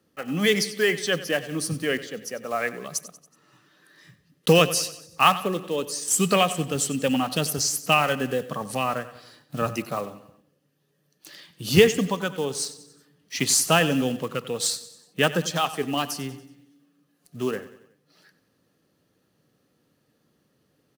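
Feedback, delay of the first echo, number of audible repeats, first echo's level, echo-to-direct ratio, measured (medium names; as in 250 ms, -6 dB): 49%, 93 ms, 4, -15.5 dB, -14.5 dB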